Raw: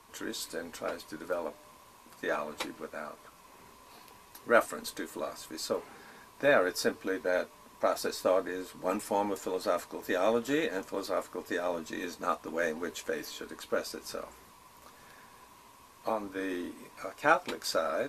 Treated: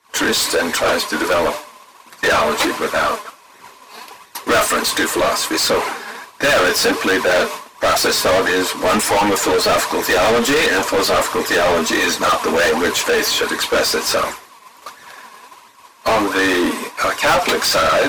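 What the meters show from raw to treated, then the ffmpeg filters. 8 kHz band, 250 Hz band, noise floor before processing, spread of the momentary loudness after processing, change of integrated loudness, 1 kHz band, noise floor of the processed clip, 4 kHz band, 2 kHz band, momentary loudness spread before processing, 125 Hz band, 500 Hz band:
+22.5 dB, +15.5 dB, -57 dBFS, 6 LU, +17.0 dB, +17.0 dB, -46 dBFS, +23.5 dB, +18.5 dB, 15 LU, +18.5 dB, +14.5 dB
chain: -filter_complex "[0:a]flanger=delay=0.5:depth=4.3:regen=38:speed=1.4:shape=sinusoidal,agate=range=0.0224:threshold=0.00447:ratio=3:detection=peak,asplit=2[s0][s1];[s1]highpass=f=720:p=1,volume=79.4,asoftclip=type=tanh:threshold=0.251[s2];[s0][s2]amix=inputs=2:normalize=0,lowpass=f=6200:p=1,volume=0.501,volume=1.78"

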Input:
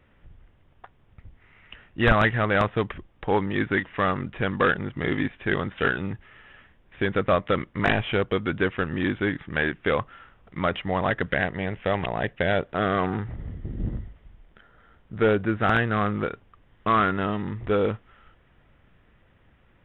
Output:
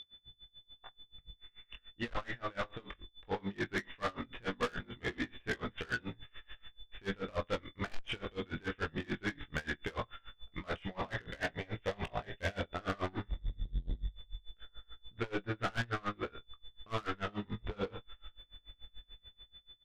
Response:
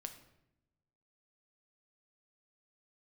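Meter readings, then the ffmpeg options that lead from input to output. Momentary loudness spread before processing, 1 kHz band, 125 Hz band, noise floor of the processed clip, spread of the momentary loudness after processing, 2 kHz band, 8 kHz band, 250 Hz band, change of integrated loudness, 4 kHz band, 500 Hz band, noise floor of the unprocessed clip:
11 LU, -15.5 dB, -14.0 dB, -71 dBFS, 17 LU, -13.5 dB, no reading, -15.0 dB, -14.5 dB, -8.5 dB, -15.5 dB, -60 dBFS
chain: -filter_complex "[0:a]asubboost=boost=5.5:cutoff=61,dynaudnorm=f=350:g=5:m=2,aemphasis=mode=production:type=50kf,flanger=delay=16:depth=5.6:speed=0.19,asplit=2[s0][s1];[s1]aecho=0:1:70:0.112[s2];[s0][s2]amix=inputs=2:normalize=0,aeval=exprs='val(0)+0.0141*sin(2*PI*3500*n/s)':c=same,asplit=2[s3][s4];[s4]adelay=25,volume=0.562[s5];[s3][s5]amix=inputs=2:normalize=0,asoftclip=type=tanh:threshold=0.0944,aeval=exprs='val(0)*pow(10,-27*(0.5-0.5*cos(2*PI*6.9*n/s))/20)':c=same,volume=0.473"

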